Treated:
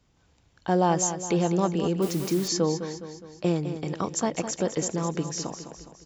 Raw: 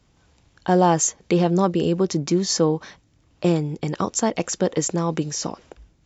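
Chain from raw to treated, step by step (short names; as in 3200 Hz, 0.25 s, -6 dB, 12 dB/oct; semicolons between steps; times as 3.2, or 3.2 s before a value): feedback echo 0.207 s, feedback 51%, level -10 dB; 2.02–2.48 requantised 6-bit, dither triangular; gain -5.5 dB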